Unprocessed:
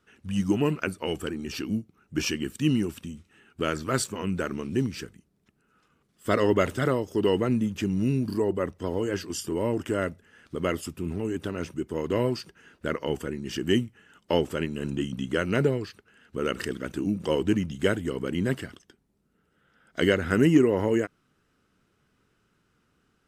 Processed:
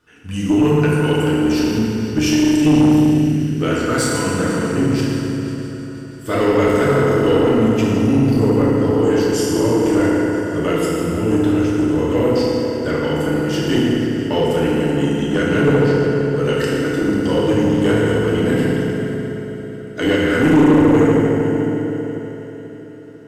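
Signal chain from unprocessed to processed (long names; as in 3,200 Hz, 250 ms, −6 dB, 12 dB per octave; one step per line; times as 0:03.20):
echo machine with several playback heads 164 ms, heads first and third, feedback 62%, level −16.5 dB
in parallel at −1 dB: brickwall limiter −19 dBFS, peak gain reduction 10.5 dB
on the sum: feedback delay network reverb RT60 3.5 s, high-frequency decay 0.55×, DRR −7.5 dB
tube saturation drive 6 dB, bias 0.25
level −1 dB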